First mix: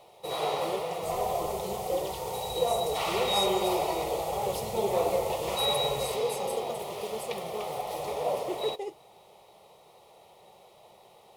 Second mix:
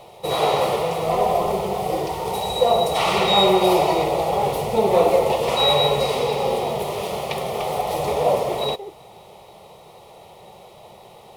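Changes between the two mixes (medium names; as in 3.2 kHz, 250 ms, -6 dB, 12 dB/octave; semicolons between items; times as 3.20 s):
speech: add low-pass 1.6 kHz; first sound +10.5 dB; master: add tone controls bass +6 dB, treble -2 dB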